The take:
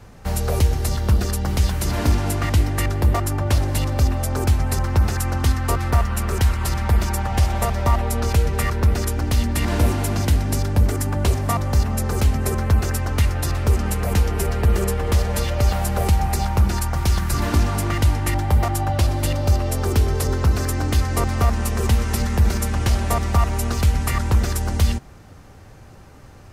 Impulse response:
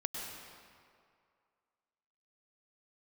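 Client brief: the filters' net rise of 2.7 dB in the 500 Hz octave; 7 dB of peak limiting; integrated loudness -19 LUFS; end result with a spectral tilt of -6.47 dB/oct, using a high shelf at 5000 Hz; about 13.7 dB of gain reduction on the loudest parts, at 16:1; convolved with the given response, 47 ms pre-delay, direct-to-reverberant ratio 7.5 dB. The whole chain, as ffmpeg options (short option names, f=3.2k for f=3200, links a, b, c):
-filter_complex "[0:a]equalizer=f=500:t=o:g=3.5,highshelf=f=5k:g=-8.5,acompressor=threshold=-25dB:ratio=16,alimiter=limit=-23dB:level=0:latency=1,asplit=2[a][b];[1:a]atrim=start_sample=2205,adelay=47[c];[b][c]afir=irnorm=-1:irlink=0,volume=-9.5dB[d];[a][d]amix=inputs=2:normalize=0,volume=13dB"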